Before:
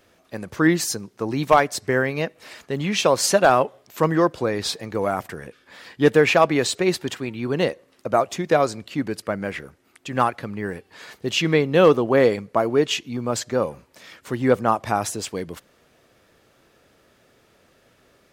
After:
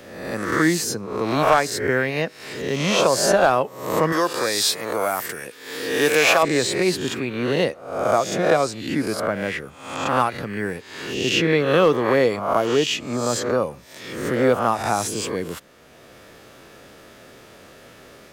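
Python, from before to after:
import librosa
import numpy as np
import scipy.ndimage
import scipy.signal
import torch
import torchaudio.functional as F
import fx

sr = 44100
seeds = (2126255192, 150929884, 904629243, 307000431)

y = fx.spec_swells(x, sr, rise_s=0.71)
y = fx.riaa(y, sr, side='recording', at=(4.12, 6.43))
y = fx.band_squash(y, sr, depth_pct=40)
y = F.gain(torch.from_numpy(y), -1.5).numpy()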